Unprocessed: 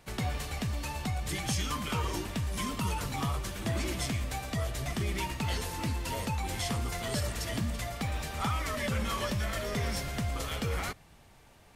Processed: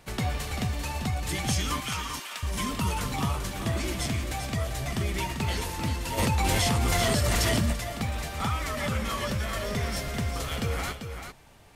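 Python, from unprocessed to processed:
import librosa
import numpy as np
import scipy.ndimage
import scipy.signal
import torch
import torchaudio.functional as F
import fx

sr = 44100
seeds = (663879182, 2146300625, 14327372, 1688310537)

y = fx.highpass(x, sr, hz=1100.0, slope=12, at=(1.8, 2.43))
y = fx.rider(y, sr, range_db=10, speed_s=2.0)
y = y + 10.0 ** (-8.0 / 20.0) * np.pad(y, (int(392 * sr / 1000.0), 0))[:len(y)]
y = fx.env_flatten(y, sr, amount_pct=100, at=(6.17, 7.72), fade=0.02)
y = y * librosa.db_to_amplitude(2.5)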